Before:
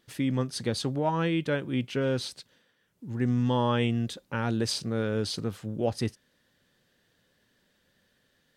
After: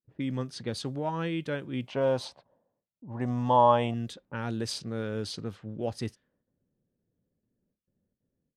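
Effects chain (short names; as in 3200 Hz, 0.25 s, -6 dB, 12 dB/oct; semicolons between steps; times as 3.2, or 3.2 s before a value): gate with hold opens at -59 dBFS; low-pass opened by the level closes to 340 Hz, open at -25.5 dBFS; 1.86–3.94 band shelf 780 Hz +14.5 dB 1.2 oct; gain -4.5 dB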